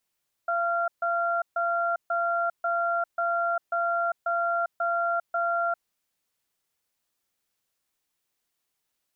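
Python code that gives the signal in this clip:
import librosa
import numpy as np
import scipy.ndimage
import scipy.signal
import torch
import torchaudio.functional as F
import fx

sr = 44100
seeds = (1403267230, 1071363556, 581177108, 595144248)

y = fx.cadence(sr, length_s=5.38, low_hz=684.0, high_hz=1380.0, on_s=0.4, off_s=0.14, level_db=-26.0)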